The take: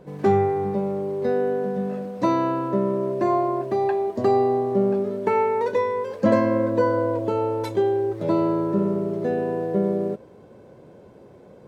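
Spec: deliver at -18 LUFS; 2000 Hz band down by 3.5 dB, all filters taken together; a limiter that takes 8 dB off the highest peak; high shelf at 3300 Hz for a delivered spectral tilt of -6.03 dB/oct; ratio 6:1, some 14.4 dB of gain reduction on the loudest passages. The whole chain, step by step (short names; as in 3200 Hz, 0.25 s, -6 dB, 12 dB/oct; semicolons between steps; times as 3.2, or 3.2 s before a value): bell 2000 Hz -3.5 dB; high shelf 3300 Hz -3.5 dB; compressor 6:1, threshold -30 dBFS; gain +17 dB; limiter -10 dBFS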